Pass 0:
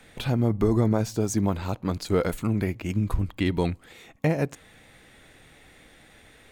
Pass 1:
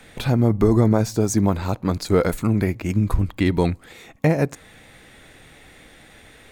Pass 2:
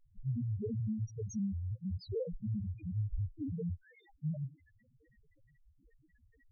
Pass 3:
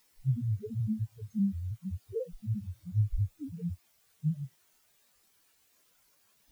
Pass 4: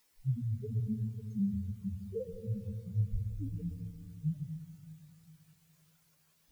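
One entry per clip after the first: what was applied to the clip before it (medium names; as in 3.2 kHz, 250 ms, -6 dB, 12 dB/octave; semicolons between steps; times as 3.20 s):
dynamic bell 3 kHz, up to -6 dB, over -57 dBFS, Q 3.8; trim +5.5 dB
saturation -20 dBFS, distortion -7 dB; loudest bins only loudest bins 1; trim -4 dB
word length cut 6-bit, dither triangular; spectral contrast expander 2.5:1; trim +4.5 dB
reverberation RT60 2.4 s, pre-delay 112 ms, DRR 7.5 dB; trim -3.5 dB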